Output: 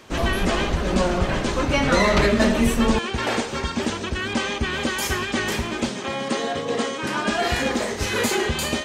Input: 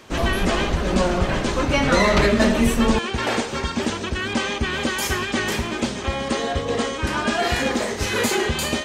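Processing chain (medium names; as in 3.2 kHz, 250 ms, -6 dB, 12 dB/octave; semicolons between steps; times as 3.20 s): 5.89–7.29 s: high-pass 130 Hz 24 dB/octave; trim -1 dB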